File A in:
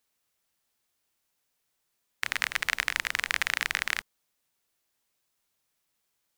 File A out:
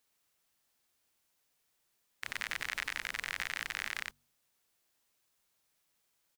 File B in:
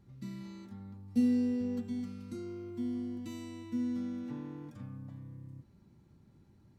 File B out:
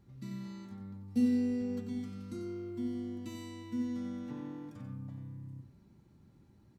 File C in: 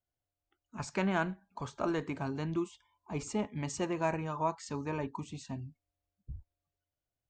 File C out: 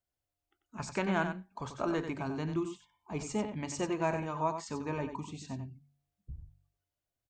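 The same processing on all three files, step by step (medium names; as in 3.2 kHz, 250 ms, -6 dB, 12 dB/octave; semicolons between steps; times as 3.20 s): hard clipper -7 dBFS; de-hum 47.42 Hz, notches 5; on a send: delay 92 ms -8.5 dB; on the sum: peak limiter -18.5 dBFS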